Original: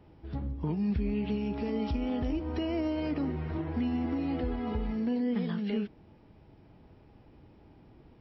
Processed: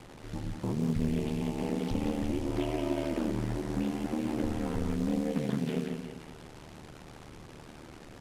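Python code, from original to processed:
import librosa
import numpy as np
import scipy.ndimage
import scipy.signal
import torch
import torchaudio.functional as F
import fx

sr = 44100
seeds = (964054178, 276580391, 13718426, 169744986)

y = fx.delta_mod(x, sr, bps=64000, step_db=-42.5)
y = fx.echo_split(y, sr, split_hz=410.0, low_ms=127, high_ms=178, feedback_pct=52, wet_db=-6.0)
y = y * np.sin(2.0 * np.pi * 38.0 * np.arange(len(y)) / sr)
y = fx.hum_notches(y, sr, base_hz=50, count=2)
y = fx.doppler_dist(y, sr, depth_ms=0.39)
y = F.gain(torch.from_numpy(y), 2.0).numpy()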